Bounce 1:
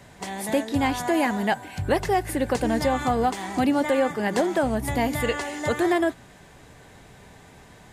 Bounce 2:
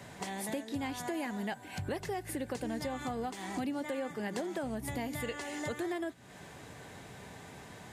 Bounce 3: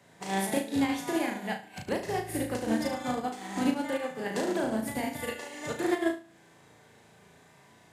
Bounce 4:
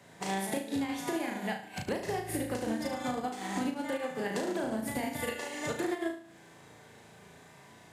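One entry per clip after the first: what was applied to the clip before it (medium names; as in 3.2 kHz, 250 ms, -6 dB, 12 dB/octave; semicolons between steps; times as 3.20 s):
high-pass 86 Hz; dynamic bell 910 Hz, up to -4 dB, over -34 dBFS, Q 0.71; compression 3:1, threshold -38 dBFS, peak gain reduction 14 dB
high-pass 130 Hz 6 dB/octave; on a send: flutter echo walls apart 6.2 m, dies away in 0.78 s; on the sum: upward expansion 2.5:1, over -43 dBFS; trim +9 dB
compression 6:1, threshold -33 dBFS, peak gain reduction 12 dB; trim +3 dB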